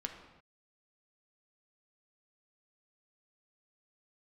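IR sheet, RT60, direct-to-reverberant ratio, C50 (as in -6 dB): no single decay rate, 3.0 dB, 7.0 dB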